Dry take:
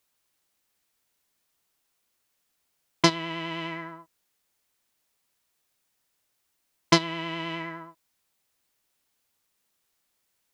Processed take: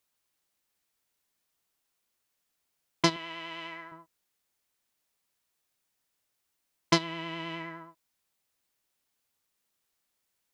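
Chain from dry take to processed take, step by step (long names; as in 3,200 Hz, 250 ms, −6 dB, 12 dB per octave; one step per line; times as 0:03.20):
0:03.16–0:03.92: high-pass filter 700 Hz 6 dB per octave
level −4.5 dB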